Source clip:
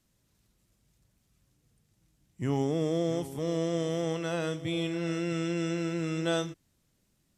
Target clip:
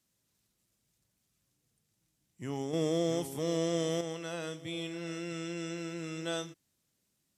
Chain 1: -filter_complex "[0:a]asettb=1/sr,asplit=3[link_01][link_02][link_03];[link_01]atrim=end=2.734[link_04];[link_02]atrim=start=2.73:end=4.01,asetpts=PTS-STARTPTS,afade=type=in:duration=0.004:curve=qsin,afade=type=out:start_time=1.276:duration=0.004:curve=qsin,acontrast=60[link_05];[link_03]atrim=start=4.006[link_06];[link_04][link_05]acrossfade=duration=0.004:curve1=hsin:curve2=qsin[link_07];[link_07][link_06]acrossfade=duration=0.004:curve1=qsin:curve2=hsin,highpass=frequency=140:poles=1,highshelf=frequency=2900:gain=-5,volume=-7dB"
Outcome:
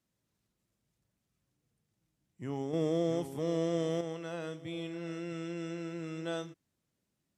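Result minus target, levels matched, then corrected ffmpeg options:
8,000 Hz band −8.5 dB
-filter_complex "[0:a]asettb=1/sr,asplit=3[link_01][link_02][link_03];[link_01]atrim=end=2.734[link_04];[link_02]atrim=start=2.73:end=4.01,asetpts=PTS-STARTPTS,afade=type=in:duration=0.004:curve=qsin,afade=type=out:start_time=1.276:duration=0.004:curve=qsin,acontrast=60[link_05];[link_03]atrim=start=4.006[link_06];[link_04][link_05]acrossfade=duration=0.004:curve1=hsin:curve2=qsin[link_07];[link_07][link_06]acrossfade=duration=0.004:curve1=qsin:curve2=hsin,highpass=frequency=140:poles=1,highshelf=frequency=2900:gain=6,volume=-7dB"

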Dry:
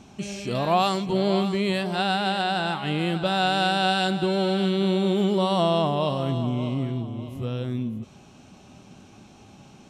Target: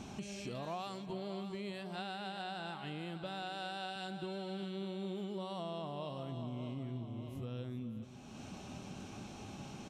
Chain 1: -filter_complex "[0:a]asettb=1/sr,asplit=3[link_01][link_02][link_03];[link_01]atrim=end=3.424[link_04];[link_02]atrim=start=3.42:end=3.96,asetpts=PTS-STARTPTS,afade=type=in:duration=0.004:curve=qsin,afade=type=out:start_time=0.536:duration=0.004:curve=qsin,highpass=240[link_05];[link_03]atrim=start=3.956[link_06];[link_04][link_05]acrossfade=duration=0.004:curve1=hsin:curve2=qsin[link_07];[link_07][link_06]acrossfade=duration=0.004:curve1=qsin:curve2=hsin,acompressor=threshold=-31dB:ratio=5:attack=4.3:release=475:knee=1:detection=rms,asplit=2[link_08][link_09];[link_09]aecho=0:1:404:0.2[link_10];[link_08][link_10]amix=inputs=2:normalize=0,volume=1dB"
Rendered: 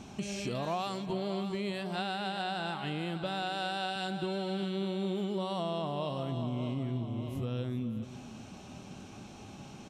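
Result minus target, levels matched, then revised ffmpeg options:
downward compressor: peak gain reduction −7.5 dB
-filter_complex "[0:a]asettb=1/sr,asplit=3[link_01][link_02][link_03];[link_01]atrim=end=3.424[link_04];[link_02]atrim=start=3.42:end=3.96,asetpts=PTS-STARTPTS,afade=type=in:duration=0.004:curve=qsin,afade=type=out:start_time=0.536:duration=0.004:curve=qsin,highpass=240[link_05];[link_03]atrim=start=3.956[link_06];[link_04][link_05]acrossfade=duration=0.004:curve1=hsin:curve2=qsin[link_07];[link_07][link_06]acrossfade=duration=0.004:curve1=qsin:curve2=hsin,acompressor=threshold=-40.5dB:ratio=5:attack=4.3:release=475:knee=1:detection=rms,asplit=2[link_08][link_09];[link_09]aecho=0:1:404:0.2[link_10];[link_08][link_10]amix=inputs=2:normalize=0,volume=1dB"

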